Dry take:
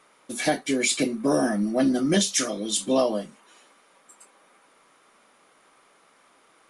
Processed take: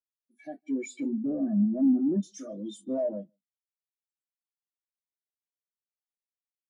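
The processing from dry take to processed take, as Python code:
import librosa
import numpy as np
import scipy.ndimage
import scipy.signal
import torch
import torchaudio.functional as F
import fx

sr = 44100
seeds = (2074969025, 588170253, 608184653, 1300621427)

y = fx.fade_in_head(x, sr, length_s=1.05)
y = fx.leveller(y, sr, passes=5)
y = fx.gaussian_blur(y, sr, sigma=3.9, at=(1.18, 2.23))
y = y + 10.0 ** (-16.5 / 20.0) * np.pad(y, (int(156 * sr / 1000.0), 0))[:len(y)]
y = fx.spectral_expand(y, sr, expansion=2.5)
y = y * librosa.db_to_amplitude(-7.5)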